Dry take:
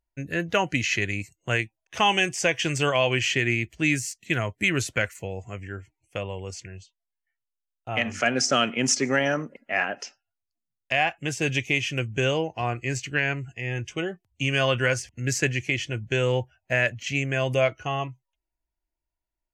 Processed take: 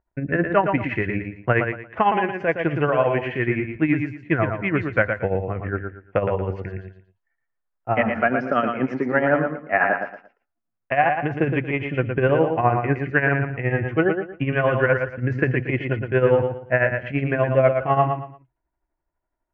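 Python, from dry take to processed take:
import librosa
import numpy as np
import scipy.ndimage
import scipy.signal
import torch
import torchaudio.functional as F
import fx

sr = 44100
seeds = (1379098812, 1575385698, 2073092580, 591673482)

p1 = x * (1.0 - 0.69 / 2.0 + 0.69 / 2.0 * np.cos(2.0 * np.pi * 12.0 * (np.arange(len(x)) / sr)))
p2 = 10.0 ** (-20.0 / 20.0) * np.tanh(p1 / 10.0 ** (-20.0 / 20.0))
p3 = p1 + (p2 * librosa.db_to_amplitude(-7.0))
p4 = fx.rider(p3, sr, range_db=4, speed_s=0.5)
p5 = scipy.signal.sosfilt(scipy.signal.butter(4, 1700.0, 'lowpass', fs=sr, output='sos'), p4)
p6 = fx.low_shelf(p5, sr, hz=120.0, db=-7.0)
p7 = p6 + fx.echo_feedback(p6, sr, ms=115, feedback_pct=27, wet_db=-6, dry=0)
y = p7 * librosa.db_to_amplitude(7.0)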